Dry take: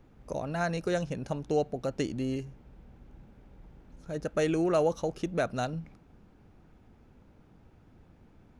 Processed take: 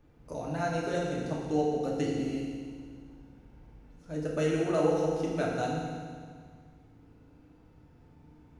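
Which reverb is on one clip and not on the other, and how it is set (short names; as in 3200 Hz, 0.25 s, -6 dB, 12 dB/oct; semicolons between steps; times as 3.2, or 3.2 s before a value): FDN reverb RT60 1.9 s, low-frequency decay 1.2×, high-frequency decay 0.95×, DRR -4 dB; gain -6 dB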